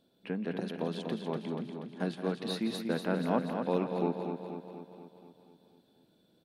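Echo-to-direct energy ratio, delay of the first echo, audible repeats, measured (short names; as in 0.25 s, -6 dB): -3.0 dB, 0.17 s, 12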